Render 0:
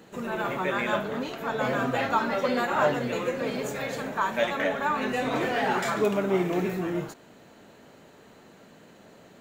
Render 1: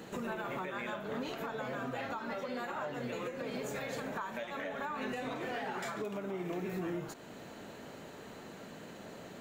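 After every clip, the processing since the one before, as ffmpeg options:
-af "acompressor=threshold=0.02:ratio=6,alimiter=level_in=2.66:limit=0.0631:level=0:latency=1:release=408,volume=0.376,volume=1.5"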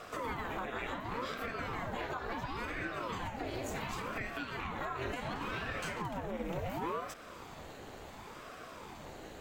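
-af "bandreject=f=62.54:t=h:w=4,bandreject=f=125.08:t=h:w=4,bandreject=f=187.62:t=h:w=4,bandreject=f=250.16:t=h:w=4,bandreject=f=312.7:t=h:w=4,bandreject=f=375.24:t=h:w=4,bandreject=f=437.78:t=h:w=4,bandreject=f=500.32:t=h:w=4,bandreject=f=562.86:t=h:w=4,bandreject=f=625.4:t=h:w=4,bandreject=f=687.94:t=h:w=4,bandreject=f=750.48:t=h:w=4,bandreject=f=813.02:t=h:w=4,bandreject=f=875.56:t=h:w=4,bandreject=f=938.1:t=h:w=4,bandreject=f=1000.64:t=h:w=4,bandreject=f=1063.18:t=h:w=4,bandreject=f=1125.72:t=h:w=4,bandreject=f=1188.26:t=h:w=4,bandreject=f=1250.8:t=h:w=4,bandreject=f=1313.34:t=h:w=4,bandreject=f=1375.88:t=h:w=4,bandreject=f=1438.42:t=h:w=4,bandreject=f=1500.96:t=h:w=4,bandreject=f=1563.5:t=h:w=4,bandreject=f=1626.04:t=h:w=4,bandreject=f=1688.58:t=h:w=4,bandreject=f=1751.12:t=h:w=4,bandreject=f=1813.66:t=h:w=4,bandreject=f=1876.2:t=h:w=4,bandreject=f=1938.74:t=h:w=4,bandreject=f=2001.28:t=h:w=4,bandreject=f=2063.82:t=h:w=4,bandreject=f=2126.36:t=h:w=4,bandreject=f=2188.9:t=h:w=4,bandreject=f=2251.44:t=h:w=4,bandreject=f=2313.98:t=h:w=4,bandreject=f=2376.52:t=h:w=4,bandreject=f=2439.06:t=h:w=4,bandreject=f=2501.6:t=h:w=4,aeval=exprs='val(0)*sin(2*PI*530*n/s+530*0.75/0.7*sin(2*PI*0.7*n/s))':c=same,volume=1.5"

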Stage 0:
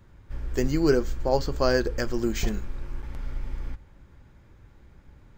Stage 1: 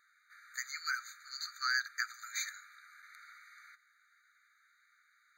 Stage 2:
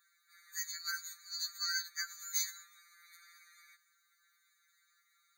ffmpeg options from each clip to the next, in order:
-af "afftfilt=real='re*eq(mod(floor(b*sr/1024/1200),2),1)':imag='im*eq(mod(floor(b*sr/1024/1200),2),1)':win_size=1024:overlap=0.75"
-af "aderivative,afftfilt=real='re*2.83*eq(mod(b,8),0)':imag='im*2.83*eq(mod(b,8),0)':win_size=2048:overlap=0.75,volume=2.66"

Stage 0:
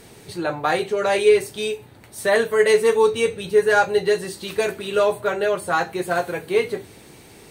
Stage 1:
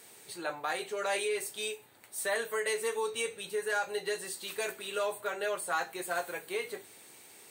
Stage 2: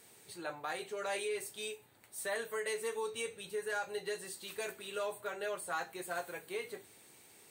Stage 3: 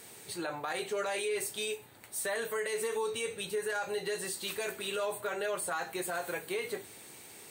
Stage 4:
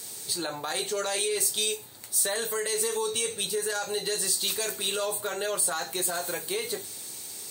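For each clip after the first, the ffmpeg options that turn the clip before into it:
-af "aexciter=amount=1.9:drive=4.3:freq=7200,alimiter=limit=0.266:level=0:latency=1:release=104,highpass=f=890:p=1,volume=0.447"
-af "lowshelf=f=170:g=9.5,volume=0.501"
-af "alimiter=level_in=3.35:limit=0.0631:level=0:latency=1:release=54,volume=0.299,volume=2.82"
-af "highshelf=f=3300:t=q:w=1.5:g=9,volume=1.5"

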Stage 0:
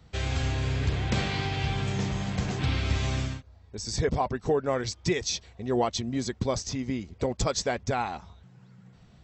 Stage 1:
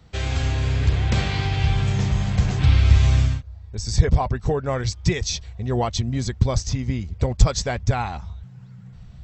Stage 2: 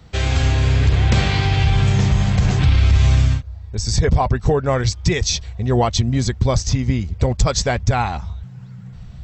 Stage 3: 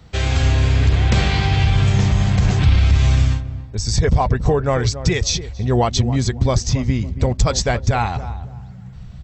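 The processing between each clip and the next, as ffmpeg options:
-af "asubboost=boost=6:cutoff=120,volume=1.5"
-af "alimiter=limit=0.237:level=0:latency=1:release=45,volume=2"
-filter_complex "[0:a]asplit=2[s0][s1];[s1]adelay=278,lowpass=f=810:p=1,volume=0.282,asplit=2[s2][s3];[s3]adelay=278,lowpass=f=810:p=1,volume=0.31,asplit=2[s4][s5];[s5]adelay=278,lowpass=f=810:p=1,volume=0.31[s6];[s0][s2][s4][s6]amix=inputs=4:normalize=0"

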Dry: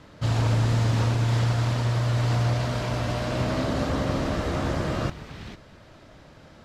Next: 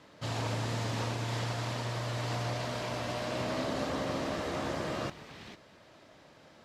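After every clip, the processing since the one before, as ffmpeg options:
-af "highpass=f=330:p=1,equalizer=f=1400:w=4.4:g=-3.5,volume=0.631"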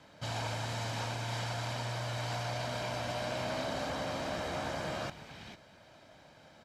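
-filter_complex "[0:a]aecho=1:1:1.3:0.38,acrossover=split=580|1600[s0][s1][s2];[s0]alimiter=level_in=2.99:limit=0.0631:level=0:latency=1,volume=0.335[s3];[s3][s1][s2]amix=inputs=3:normalize=0,volume=0.891"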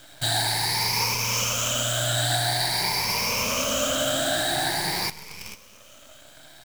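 -af "afftfilt=real='re*pow(10,19/40*sin(2*PI*(0.83*log(max(b,1)*sr/1024/100)/log(2)-(0.47)*(pts-256)/sr)))':imag='im*pow(10,19/40*sin(2*PI*(0.83*log(max(b,1)*sr/1024/100)/log(2)-(0.47)*(pts-256)/sr)))':win_size=1024:overlap=0.75,crystalizer=i=5:c=0,acrusher=bits=6:dc=4:mix=0:aa=0.000001,volume=1.41"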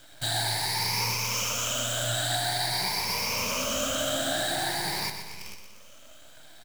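-af "flanger=delay=2:depth=9.1:regen=84:speed=0.63:shape=sinusoidal,aecho=1:1:122|244|366|488|610|732:0.355|0.177|0.0887|0.0444|0.0222|0.0111"

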